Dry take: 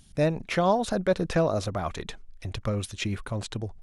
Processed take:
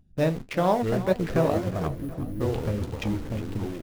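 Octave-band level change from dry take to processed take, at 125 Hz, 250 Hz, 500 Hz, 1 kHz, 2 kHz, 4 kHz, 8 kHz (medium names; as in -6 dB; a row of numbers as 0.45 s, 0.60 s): +2.5 dB, +2.5 dB, +1.0 dB, 0.0 dB, -2.0 dB, -5.0 dB, -6.0 dB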